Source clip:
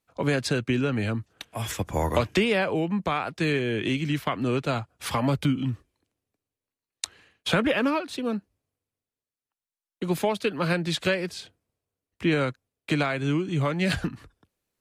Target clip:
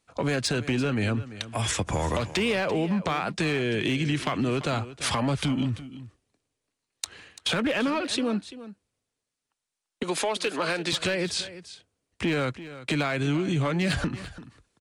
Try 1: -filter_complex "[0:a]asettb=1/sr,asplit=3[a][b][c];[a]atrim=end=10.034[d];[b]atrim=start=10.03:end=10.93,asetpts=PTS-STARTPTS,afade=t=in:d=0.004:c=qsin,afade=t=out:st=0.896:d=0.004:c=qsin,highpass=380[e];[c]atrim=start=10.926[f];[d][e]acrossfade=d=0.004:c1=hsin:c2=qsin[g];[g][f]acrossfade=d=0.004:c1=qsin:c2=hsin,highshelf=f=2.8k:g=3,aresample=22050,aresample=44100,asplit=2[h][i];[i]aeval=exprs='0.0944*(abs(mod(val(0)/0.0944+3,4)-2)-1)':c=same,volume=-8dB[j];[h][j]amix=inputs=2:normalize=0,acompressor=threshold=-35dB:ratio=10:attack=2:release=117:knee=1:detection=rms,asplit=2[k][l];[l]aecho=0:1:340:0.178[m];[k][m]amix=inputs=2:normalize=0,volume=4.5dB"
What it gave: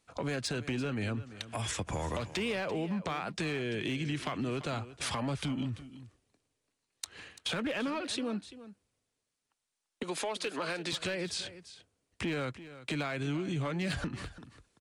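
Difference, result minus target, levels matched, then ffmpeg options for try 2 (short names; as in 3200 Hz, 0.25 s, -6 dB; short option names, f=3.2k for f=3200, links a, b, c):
compressor: peak gain reduction +8 dB
-filter_complex "[0:a]asettb=1/sr,asplit=3[a][b][c];[a]atrim=end=10.034[d];[b]atrim=start=10.03:end=10.93,asetpts=PTS-STARTPTS,afade=t=in:d=0.004:c=qsin,afade=t=out:st=0.896:d=0.004:c=qsin,highpass=380[e];[c]atrim=start=10.926[f];[d][e]acrossfade=d=0.004:c1=hsin:c2=qsin[g];[g][f]acrossfade=d=0.004:c1=qsin:c2=hsin,highshelf=f=2.8k:g=3,aresample=22050,aresample=44100,asplit=2[h][i];[i]aeval=exprs='0.0944*(abs(mod(val(0)/0.0944+3,4)-2)-1)':c=same,volume=-8dB[j];[h][j]amix=inputs=2:normalize=0,acompressor=threshold=-26dB:ratio=10:attack=2:release=117:knee=1:detection=rms,asplit=2[k][l];[l]aecho=0:1:340:0.178[m];[k][m]amix=inputs=2:normalize=0,volume=4.5dB"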